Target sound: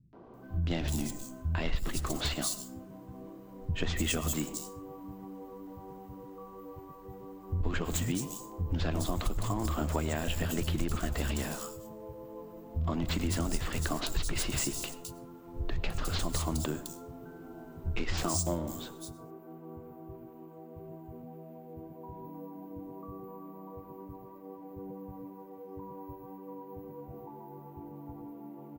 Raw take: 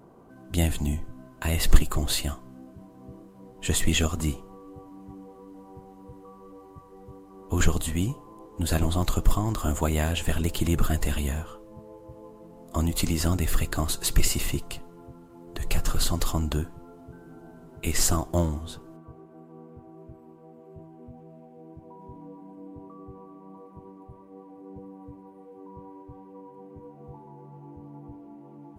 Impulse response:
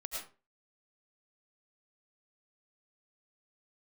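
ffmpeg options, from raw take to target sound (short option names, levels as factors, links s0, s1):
-filter_complex "[0:a]lowshelf=f=65:g=-7,acrusher=samples=3:mix=1:aa=0.000001,acrossover=split=150|4700[s0][s1][s2];[s1]adelay=130[s3];[s2]adelay=340[s4];[s0][s3][s4]amix=inputs=3:normalize=0,asplit=2[s5][s6];[1:a]atrim=start_sample=2205,lowshelf=f=490:g=11.5[s7];[s6][s7]afir=irnorm=-1:irlink=0,volume=0.141[s8];[s5][s8]amix=inputs=2:normalize=0,acompressor=threshold=0.0398:ratio=4"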